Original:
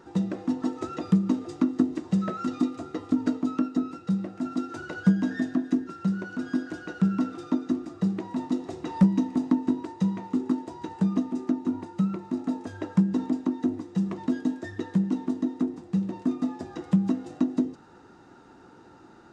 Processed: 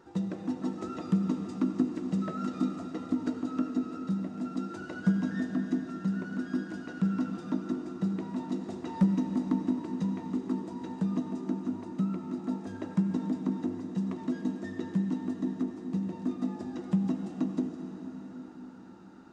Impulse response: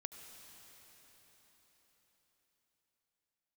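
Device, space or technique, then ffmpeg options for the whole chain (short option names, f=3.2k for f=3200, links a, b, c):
cathedral: -filter_complex "[1:a]atrim=start_sample=2205[a];[0:a][a]afir=irnorm=-1:irlink=0,volume=-1dB"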